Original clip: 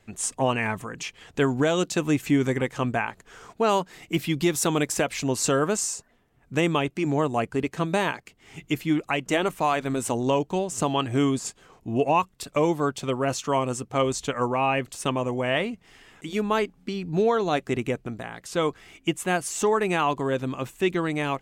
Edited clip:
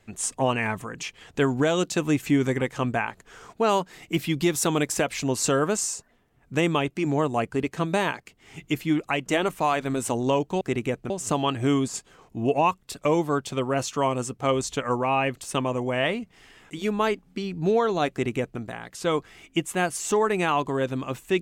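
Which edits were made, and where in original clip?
17.62–18.11 copy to 10.61

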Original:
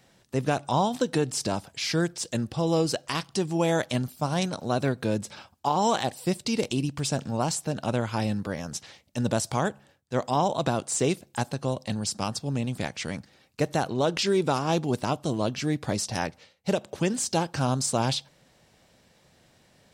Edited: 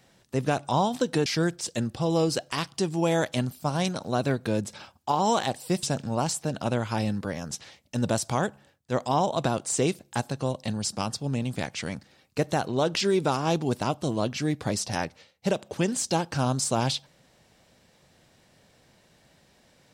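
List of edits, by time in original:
1.26–1.83 cut
6.4–7.05 cut

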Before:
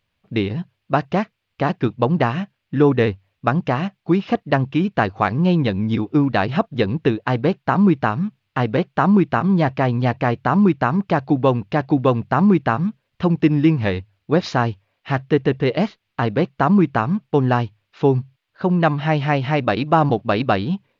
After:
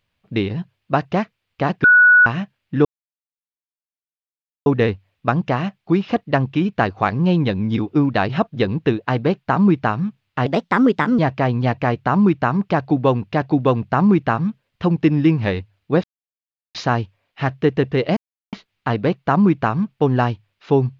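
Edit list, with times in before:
1.84–2.26 bleep 1470 Hz -7 dBFS
2.85 insert silence 1.81 s
8.65–9.58 speed 128%
14.43 insert silence 0.71 s
15.85 insert silence 0.36 s

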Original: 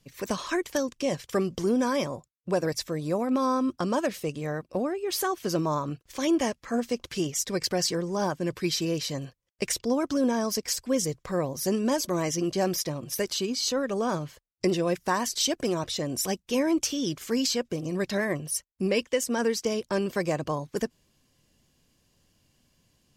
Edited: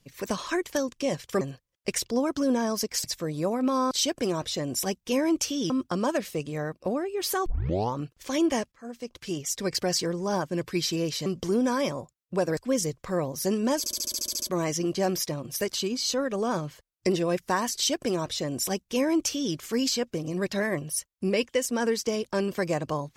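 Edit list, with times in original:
1.41–2.72 swap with 9.15–10.78
5.35 tape start 0.50 s
6.61–7.56 fade in, from -20.5 dB
12 stutter 0.07 s, 10 plays
15.33–17.12 copy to 3.59

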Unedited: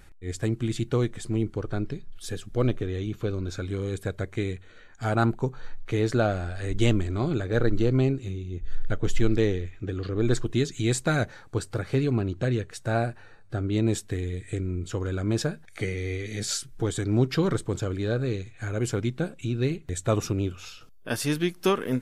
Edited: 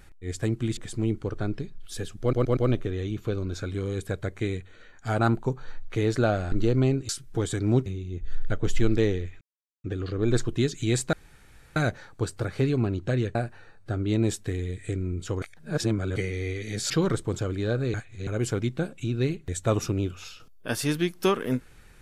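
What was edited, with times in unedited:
0.77–1.09 cut
2.53 stutter 0.12 s, 4 plays
6.48–7.69 cut
9.81 insert silence 0.43 s
11.1 insert room tone 0.63 s
12.69–12.99 cut
15.06–15.8 reverse
16.54–17.31 move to 8.26
18.35–18.68 reverse

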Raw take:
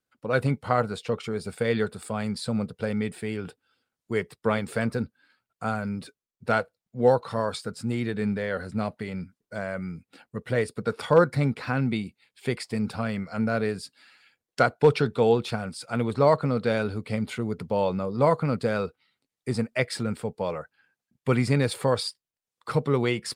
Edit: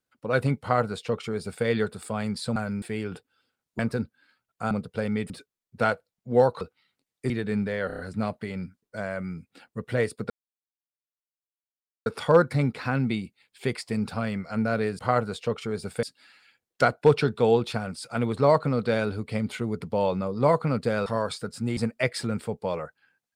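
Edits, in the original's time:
0.61–1.65 copy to 13.81
2.56–3.15 swap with 5.72–5.98
4.12–4.8 cut
7.29–8 swap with 18.84–19.53
8.57 stutter 0.03 s, 5 plays
10.88 insert silence 1.76 s

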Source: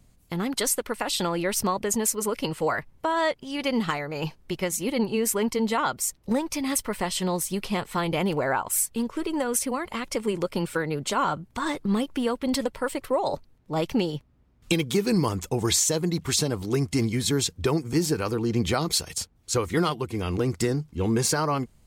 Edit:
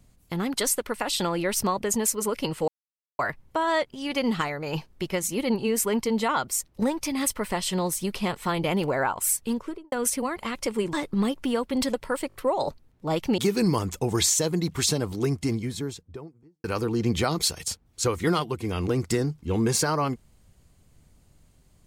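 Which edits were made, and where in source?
2.68 insert silence 0.51 s
9.03–9.41 studio fade out
10.42–11.65 cut
13 stutter 0.02 s, 4 plays
14.04–14.88 cut
16.47–18.14 studio fade out

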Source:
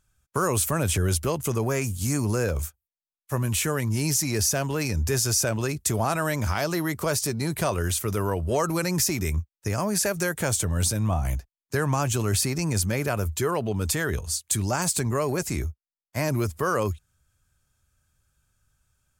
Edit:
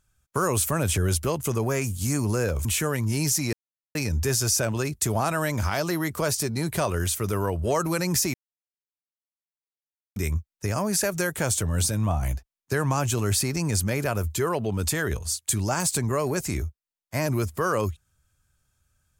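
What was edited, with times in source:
2.65–3.49 cut
4.37–4.79 mute
9.18 insert silence 1.82 s

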